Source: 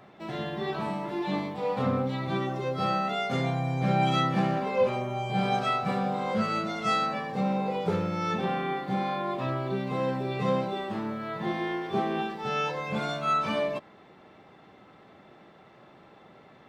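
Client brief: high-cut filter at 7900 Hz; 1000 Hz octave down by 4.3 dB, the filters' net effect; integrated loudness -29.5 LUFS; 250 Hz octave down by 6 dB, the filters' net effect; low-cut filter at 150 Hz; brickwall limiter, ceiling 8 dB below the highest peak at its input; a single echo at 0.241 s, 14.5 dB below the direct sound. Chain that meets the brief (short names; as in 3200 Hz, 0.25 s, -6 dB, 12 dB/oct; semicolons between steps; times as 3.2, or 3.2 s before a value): HPF 150 Hz; LPF 7900 Hz; bell 250 Hz -7 dB; bell 1000 Hz -6 dB; limiter -24.5 dBFS; echo 0.241 s -14.5 dB; gain +5 dB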